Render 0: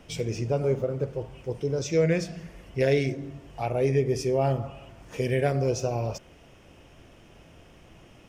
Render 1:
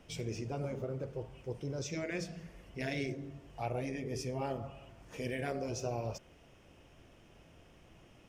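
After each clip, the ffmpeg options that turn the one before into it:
ffmpeg -i in.wav -af "afftfilt=real='re*lt(hypot(re,im),0.398)':imag='im*lt(hypot(re,im),0.398)':win_size=1024:overlap=0.75,volume=-7.5dB" out.wav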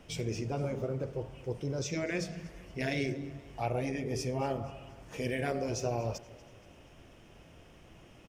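ffmpeg -i in.wav -af "aecho=1:1:238|476|714|952:0.0944|0.0481|0.0246|0.0125,volume=4dB" out.wav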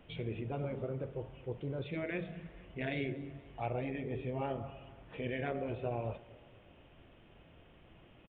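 ffmpeg -i in.wav -af "aresample=8000,aresample=44100,volume=-4dB" out.wav

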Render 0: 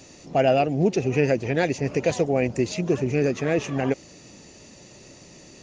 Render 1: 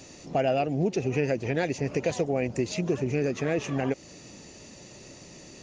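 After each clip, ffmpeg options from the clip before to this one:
ffmpeg -i in.wav -af "acompressor=threshold=-26dB:ratio=2" out.wav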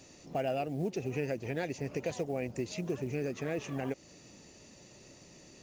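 ffmpeg -i in.wav -af "acrusher=bits=8:mode=log:mix=0:aa=0.000001,volume=-8dB" out.wav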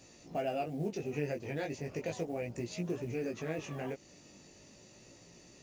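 ffmpeg -i in.wav -af "flanger=delay=17:depth=3.7:speed=0.36,volume=1dB" out.wav

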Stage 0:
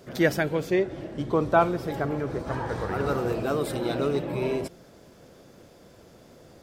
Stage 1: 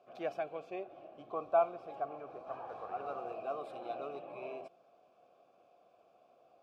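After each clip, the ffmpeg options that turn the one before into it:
ffmpeg -i in.wav -filter_complex "[0:a]asplit=3[link_01][link_02][link_03];[link_01]bandpass=frequency=730:width_type=q:width=8,volume=0dB[link_04];[link_02]bandpass=frequency=1090:width_type=q:width=8,volume=-6dB[link_05];[link_03]bandpass=frequency=2440:width_type=q:width=8,volume=-9dB[link_06];[link_04][link_05][link_06]amix=inputs=3:normalize=0,volume=-2dB" out.wav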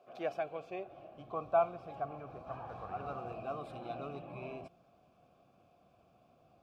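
ffmpeg -i in.wav -af "asubboost=boost=11:cutoff=150,volume=1.5dB" out.wav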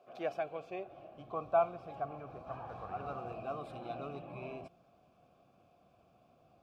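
ffmpeg -i in.wav -af anull out.wav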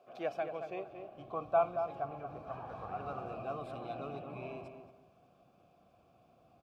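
ffmpeg -i in.wav -filter_complex "[0:a]asplit=2[link_01][link_02];[link_02]adelay=228,lowpass=frequency=1900:poles=1,volume=-7dB,asplit=2[link_03][link_04];[link_04]adelay=228,lowpass=frequency=1900:poles=1,volume=0.24,asplit=2[link_05][link_06];[link_06]adelay=228,lowpass=frequency=1900:poles=1,volume=0.24[link_07];[link_01][link_03][link_05][link_07]amix=inputs=4:normalize=0" out.wav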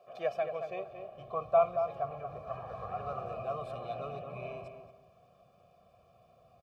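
ffmpeg -i in.wav -af "aecho=1:1:1.7:0.75" out.wav

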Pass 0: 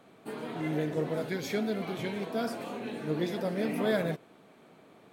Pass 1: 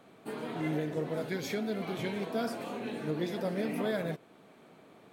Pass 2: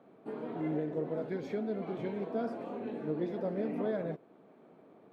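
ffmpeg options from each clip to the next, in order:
ffmpeg -i in.wav -af "alimiter=limit=-22.5dB:level=0:latency=1:release=437" out.wav
ffmpeg -i in.wav -af "bandpass=frequency=380:width_type=q:width=0.61:csg=0" -ar 48000 -c:a libopus -b:a 128k out.opus

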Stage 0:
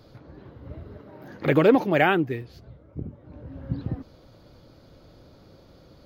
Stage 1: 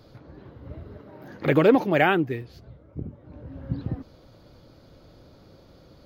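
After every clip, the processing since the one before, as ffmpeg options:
ffmpeg -i in.wav -af anull out.wav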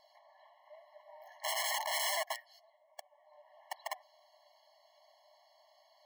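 ffmpeg -i in.wav -af "aeval=exprs='(mod(13.3*val(0)+1,2)-1)/13.3':channel_layout=same,afftfilt=real='re*eq(mod(floor(b*sr/1024/560),2),1)':imag='im*eq(mod(floor(b*sr/1024/560),2),1)':win_size=1024:overlap=0.75,volume=-3.5dB" out.wav

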